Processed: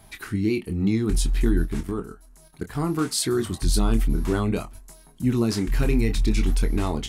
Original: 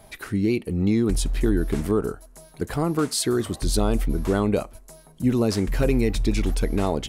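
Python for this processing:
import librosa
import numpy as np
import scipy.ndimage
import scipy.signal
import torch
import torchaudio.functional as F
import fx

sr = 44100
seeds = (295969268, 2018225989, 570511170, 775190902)

y = fx.peak_eq(x, sr, hz=550.0, db=-10.5, octaves=0.68)
y = fx.level_steps(y, sr, step_db=13, at=(1.62, 2.75))
y = fx.chorus_voices(y, sr, voices=2, hz=0.59, base_ms=25, depth_ms=3.3, mix_pct=30)
y = y * 10.0 ** (2.5 / 20.0)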